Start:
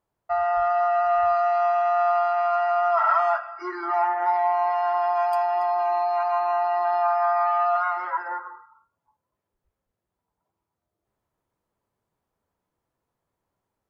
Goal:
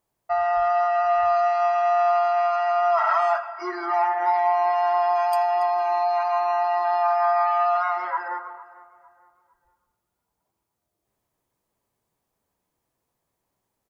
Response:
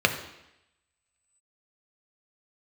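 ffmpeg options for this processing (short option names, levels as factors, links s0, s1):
-filter_complex "[0:a]highshelf=f=3400:g=9.5,asplit=2[s0][s1];[s1]adelay=455,lowpass=f=2000:p=1,volume=0.112,asplit=2[s2][s3];[s3]adelay=455,lowpass=f=2000:p=1,volume=0.39,asplit=2[s4][s5];[s5]adelay=455,lowpass=f=2000:p=1,volume=0.39[s6];[s0][s2][s4][s6]amix=inputs=4:normalize=0,asplit=2[s7][s8];[1:a]atrim=start_sample=2205,asetrate=23814,aresample=44100[s9];[s8][s9]afir=irnorm=-1:irlink=0,volume=0.0224[s10];[s7][s10]amix=inputs=2:normalize=0"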